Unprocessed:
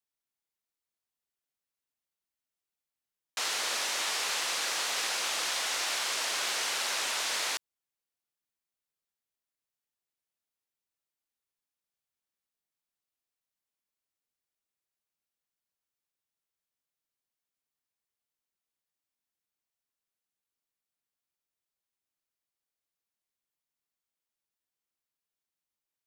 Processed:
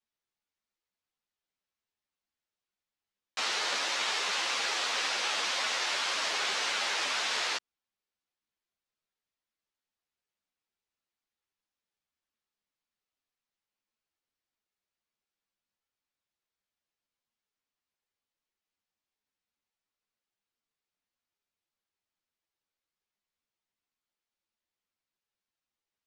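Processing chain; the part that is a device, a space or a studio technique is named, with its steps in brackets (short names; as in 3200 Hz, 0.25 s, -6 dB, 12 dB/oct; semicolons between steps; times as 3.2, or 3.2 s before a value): string-machine ensemble chorus (ensemble effect; LPF 5300 Hz 12 dB/oct); gain +5 dB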